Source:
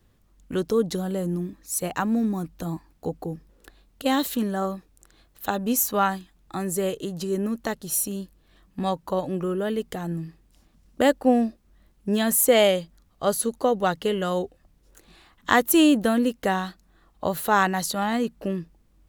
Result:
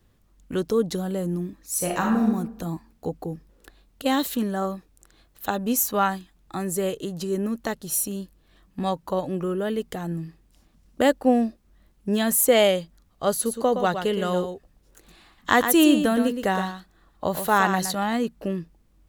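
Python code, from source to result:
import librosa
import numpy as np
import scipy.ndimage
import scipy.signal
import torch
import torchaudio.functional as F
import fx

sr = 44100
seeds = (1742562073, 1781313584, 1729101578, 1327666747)

y = fx.reverb_throw(x, sr, start_s=1.71, length_s=0.56, rt60_s=0.82, drr_db=0.0)
y = fx.echo_single(y, sr, ms=117, db=-8.0, at=(13.45, 17.93), fade=0.02)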